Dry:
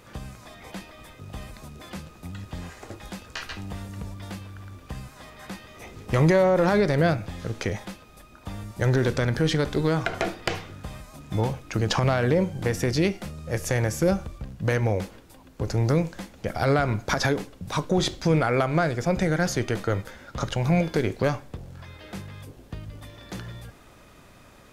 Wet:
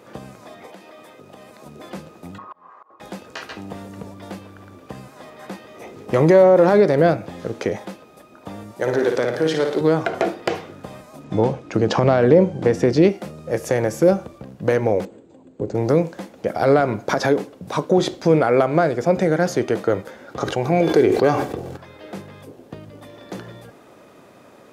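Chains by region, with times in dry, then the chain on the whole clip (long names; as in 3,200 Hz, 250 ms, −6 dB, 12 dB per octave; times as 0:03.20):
0:00.66–0:01.66: high-pass filter 240 Hz 6 dB per octave + downward compressor 4 to 1, threshold −43 dBFS
0:02.38–0:03.00: low-pass with resonance 1,100 Hz, resonance Q 13 + volume swells 783 ms + spectral tilt +4.5 dB per octave
0:08.75–0:09.81: high-pass filter 420 Hz 6 dB per octave + flutter between parallel walls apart 9.7 metres, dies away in 0.59 s
0:11.24–0:13.09: low-pass filter 7,200 Hz + low-shelf EQ 360 Hz +4.5 dB
0:15.05–0:15.75: drawn EQ curve 400 Hz 0 dB, 1,100 Hz −11 dB, 4,000 Hz −9 dB, 8,800 Hz −27 dB + bad sample-rate conversion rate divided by 4×, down filtered, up zero stuff + linear-phase brick-wall low-pass 8,400 Hz
0:20.29–0:21.77: comb filter 2.6 ms, depth 36% + level that may fall only so fast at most 25 dB per second
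whole clip: high-pass filter 130 Hz 12 dB per octave; parametric band 460 Hz +10.5 dB 2.5 octaves; level −1.5 dB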